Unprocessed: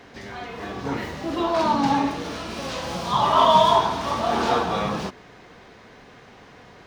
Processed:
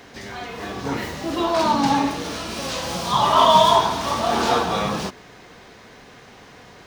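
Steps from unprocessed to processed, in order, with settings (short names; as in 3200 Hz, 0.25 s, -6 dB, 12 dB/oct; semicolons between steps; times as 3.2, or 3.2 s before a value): high shelf 5300 Hz +10 dB; gain +1.5 dB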